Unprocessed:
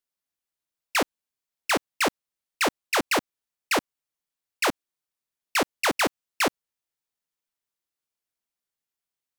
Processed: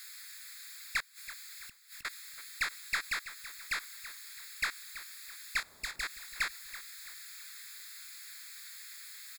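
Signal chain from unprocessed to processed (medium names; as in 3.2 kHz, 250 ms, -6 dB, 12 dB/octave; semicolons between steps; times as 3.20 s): jump at every zero crossing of -37 dBFS; inverse Chebyshev high-pass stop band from 680 Hz, stop band 50 dB; tilt EQ +3.5 dB/octave; 3.05–3.78 s: compression 1.5:1, threshold -29 dBFS, peak gain reduction 6 dB; peak limiter -10.5 dBFS, peak gain reduction 6.5 dB; saturation -13 dBFS, distortion -18 dB; 1.00–2.05 s: inverted gate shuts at -21 dBFS, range -34 dB; 5.60–6.03 s: power-law waveshaper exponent 2; boxcar filter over 15 samples; feedback delay 330 ms, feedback 42%, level -14 dB; trim +7 dB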